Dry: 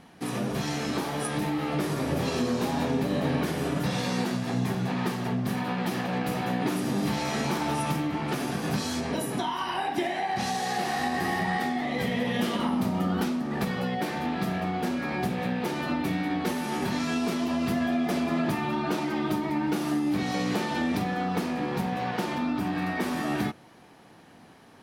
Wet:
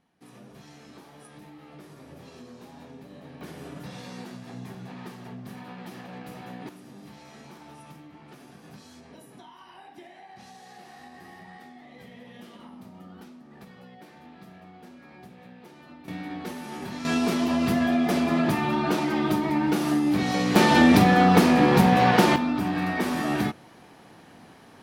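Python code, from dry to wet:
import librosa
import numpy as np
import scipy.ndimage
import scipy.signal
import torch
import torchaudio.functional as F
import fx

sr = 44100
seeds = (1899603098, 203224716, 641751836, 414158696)

y = fx.gain(x, sr, db=fx.steps((0.0, -19.0), (3.41, -12.0), (6.69, -19.0), (16.08, -7.0), (17.05, 3.5), (20.56, 11.5), (22.36, 2.5)))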